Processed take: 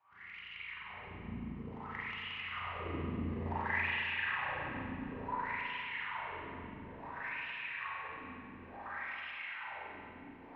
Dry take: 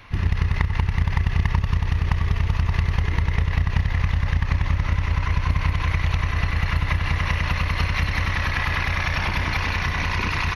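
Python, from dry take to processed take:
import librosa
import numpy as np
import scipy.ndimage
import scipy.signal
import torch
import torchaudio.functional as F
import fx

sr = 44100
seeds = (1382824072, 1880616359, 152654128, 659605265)

y = fx.doppler_pass(x, sr, speed_mps=29, closest_m=29.0, pass_at_s=3.56)
y = fx.wah_lfo(y, sr, hz=0.57, low_hz=240.0, high_hz=2900.0, q=9.0)
y = fx.rev_spring(y, sr, rt60_s=2.4, pass_ms=(35, 45), chirp_ms=30, drr_db=-10.0)
y = y * librosa.db_to_amplitude(-1.5)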